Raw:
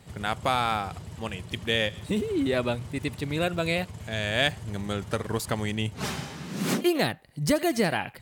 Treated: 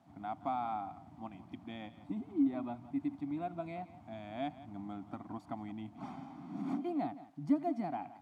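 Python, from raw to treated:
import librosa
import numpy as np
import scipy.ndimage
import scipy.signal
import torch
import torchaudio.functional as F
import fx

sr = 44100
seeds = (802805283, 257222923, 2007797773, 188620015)

p1 = fx.recorder_agc(x, sr, target_db=-18.5, rise_db_per_s=6.5, max_gain_db=30)
p2 = p1 + 0.56 * np.pad(p1, (int(0.9 * sr / 1000.0), 0))[:len(p1)]
p3 = fx.quant_dither(p2, sr, seeds[0], bits=6, dither='triangular')
p4 = p2 + (p3 * 10.0 ** (-8.5 / 20.0))
p5 = fx.double_bandpass(p4, sr, hz=450.0, octaves=1.3)
p6 = p5 + fx.echo_single(p5, sr, ms=172, db=-16.0, dry=0)
y = p6 * 10.0 ** (-5.0 / 20.0)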